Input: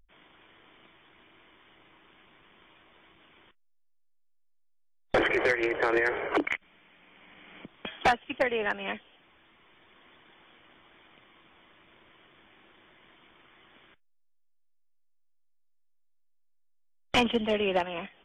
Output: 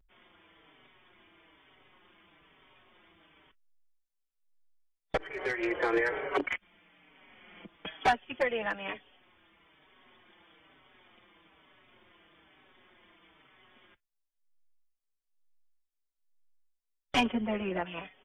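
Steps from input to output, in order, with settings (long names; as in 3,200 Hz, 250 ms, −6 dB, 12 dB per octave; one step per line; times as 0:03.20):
0:05.17–0:05.69: fade in
0:17.26–0:17.86: low-pass filter 2,300 Hz 24 dB per octave
barber-pole flanger 4.9 ms −1.1 Hz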